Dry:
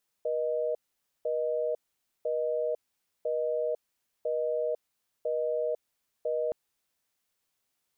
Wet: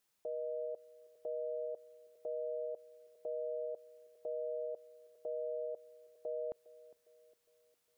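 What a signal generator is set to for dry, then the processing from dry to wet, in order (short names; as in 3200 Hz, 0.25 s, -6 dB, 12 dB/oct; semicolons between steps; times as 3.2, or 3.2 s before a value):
call progress tone busy tone, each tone -29.5 dBFS 6.27 s
limiter -33.5 dBFS; narrowing echo 0.407 s, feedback 50%, band-pass 360 Hz, level -18.5 dB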